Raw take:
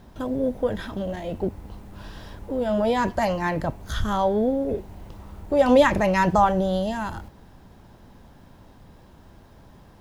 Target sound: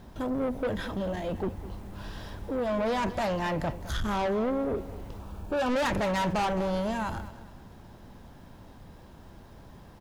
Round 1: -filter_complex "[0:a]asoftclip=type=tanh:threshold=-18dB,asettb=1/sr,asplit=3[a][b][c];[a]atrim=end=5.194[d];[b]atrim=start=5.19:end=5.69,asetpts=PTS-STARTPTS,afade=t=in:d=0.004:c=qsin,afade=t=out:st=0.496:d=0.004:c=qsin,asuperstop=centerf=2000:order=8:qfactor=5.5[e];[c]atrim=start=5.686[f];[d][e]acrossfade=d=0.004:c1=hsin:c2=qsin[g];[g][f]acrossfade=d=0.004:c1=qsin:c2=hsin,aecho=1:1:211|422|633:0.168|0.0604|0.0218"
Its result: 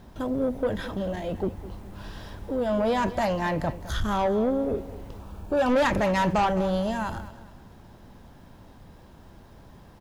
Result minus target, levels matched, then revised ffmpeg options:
soft clip: distortion -5 dB
-filter_complex "[0:a]asoftclip=type=tanh:threshold=-25dB,asettb=1/sr,asplit=3[a][b][c];[a]atrim=end=5.194[d];[b]atrim=start=5.19:end=5.69,asetpts=PTS-STARTPTS,afade=t=in:d=0.004:c=qsin,afade=t=out:st=0.496:d=0.004:c=qsin,asuperstop=centerf=2000:order=8:qfactor=5.5[e];[c]atrim=start=5.686[f];[d][e]acrossfade=d=0.004:c1=hsin:c2=qsin[g];[g][f]acrossfade=d=0.004:c1=qsin:c2=hsin,aecho=1:1:211|422|633:0.168|0.0604|0.0218"

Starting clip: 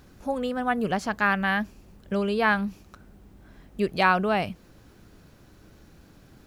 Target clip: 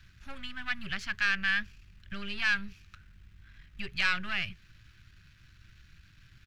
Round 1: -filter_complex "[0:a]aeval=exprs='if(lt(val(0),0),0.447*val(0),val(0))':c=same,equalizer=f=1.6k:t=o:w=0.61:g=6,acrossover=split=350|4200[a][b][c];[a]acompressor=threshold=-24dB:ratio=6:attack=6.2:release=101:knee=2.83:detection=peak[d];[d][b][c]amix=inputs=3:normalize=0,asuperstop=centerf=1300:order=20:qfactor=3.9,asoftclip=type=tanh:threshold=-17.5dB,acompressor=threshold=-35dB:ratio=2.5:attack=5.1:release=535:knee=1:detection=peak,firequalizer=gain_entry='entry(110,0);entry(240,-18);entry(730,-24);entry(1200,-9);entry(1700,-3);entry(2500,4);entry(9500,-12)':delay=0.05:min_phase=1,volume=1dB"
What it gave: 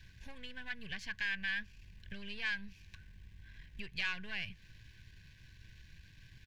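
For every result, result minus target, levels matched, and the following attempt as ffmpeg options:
compressor: peak gain reduction +10 dB; 1000 Hz band -5.0 dB
-filter_complex "[0:a]aeval=exprs='if(lt(val(0),0),0.447*val(0),val(0))':c=same,equalizer=f=1.6k:t=o:w=0.61:g=6,acrossover=split=350|4200[a][b][c];[a]acompressor=threshold=-24dB:ratio=6:attack=6.2:release=101:knee=2.83:detection=peak[d];[d][b][c]amix=inputs=3:normalize=0,asuperstop=centerf=1300:order=20:qfactor=3.9,asoftclip=type=tanh:threshold=-17.5dB,firequalizer=gain_entry='entry(110,0);entry(240,-18);entry(730,-24);entry(1200,-9);entry(1700,-3);entry(2500,4);entry(9500,-12)':delay=0.05:min_phase=1,volume=1dB"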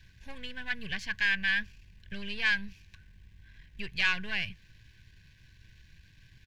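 1000 Hz band -5.0 dB
-filter_complex "[0:a]aeval=exprs='if(lt(val(0),0),0.447*val(0),val(0))':c=same,equalizer=f=1.6k:t=o:w=0.61:g=6,acrossover=split=350|4200[a][b][c];[a]acompressor=threshold=-24dB:ratio=6:attack=6.2:release=101:knee=2.83:detection=peak[d];[d][b][c]amix=inputs=3:normalize=0,asuperstop=centerf=470:order=20:qfactor=3.9,asoftclip=type=tanh:threshold=-17.5dB,firequalizer=gain_entry='entry(110,0);entry(240,-18);entry(730,-24);entry(1200,-9);entry(1700,-3);entry(2500,4);entry(9500,-12)':delay=0.05:min_phase=1,volume=1dB"

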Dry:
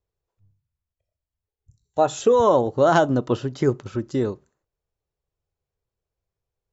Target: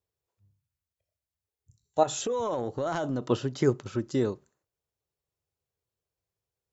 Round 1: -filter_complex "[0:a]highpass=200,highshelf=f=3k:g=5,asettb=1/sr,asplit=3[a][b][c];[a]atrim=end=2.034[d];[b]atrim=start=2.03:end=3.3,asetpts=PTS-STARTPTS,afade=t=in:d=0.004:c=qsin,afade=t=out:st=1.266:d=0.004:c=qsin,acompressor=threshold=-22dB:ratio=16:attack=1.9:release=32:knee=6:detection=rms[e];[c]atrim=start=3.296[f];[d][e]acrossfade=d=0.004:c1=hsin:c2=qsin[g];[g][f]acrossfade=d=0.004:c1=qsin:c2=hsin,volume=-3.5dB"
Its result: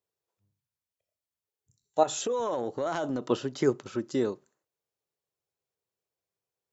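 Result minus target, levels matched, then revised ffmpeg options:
125 Hz band -6.5 dB
-filter_complex "[0:a]highpass=76,highshelf=f=3k:g=5,asettb=1/sr,asplit=3[a][b][c];[a]atrim=end=2.034[d];[b]atrim=start=2.03:end=3.3,asetpts=PTS-STARTPTS,afade=t=in:d=0.004:c=qsin,afade=t=out:st=1.266:d=0.004:c=qsin,acompressor=threshold=-22dB:ratio=16:attack=1.9:release=32:knee=6:detection=rms[e];[c]atrim=start=3.296[f];[d][e]acrossfade=d=0.004:c1=hsin:c2=qsin[g];[g][f]acrossfade=d=0.004:c1=qsin:c2=hsin,volume=-3.5dB"

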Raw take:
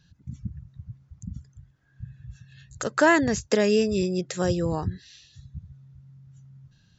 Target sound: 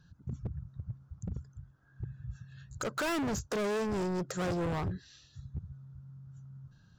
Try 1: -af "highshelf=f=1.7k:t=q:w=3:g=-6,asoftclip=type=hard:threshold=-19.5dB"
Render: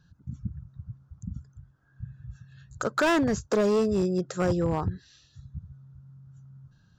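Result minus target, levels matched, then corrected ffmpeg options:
hard clip: distortion -6 dB
-af "highshelf=f=1.7k:t=q:w=3:g=-6,asoftclip=type=hard:threshold=-30.5dB"

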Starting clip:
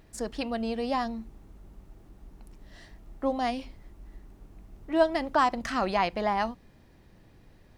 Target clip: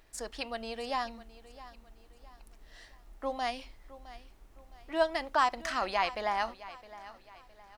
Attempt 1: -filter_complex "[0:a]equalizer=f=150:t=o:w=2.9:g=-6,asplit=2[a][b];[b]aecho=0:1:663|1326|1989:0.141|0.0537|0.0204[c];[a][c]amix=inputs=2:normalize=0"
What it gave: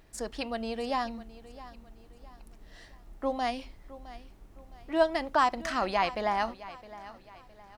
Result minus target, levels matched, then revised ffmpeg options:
125 Hz band +4.0 dB
-filter_complex "[0:a]equalizer=f=150:t=o:w=2.9:g=-16.5,asplit=2[a][b];[b]aecho=0:1:663|1326|1989:0.141|0.0537|0.0204[c];[a][c]amix=inputs=2:normalize=0"

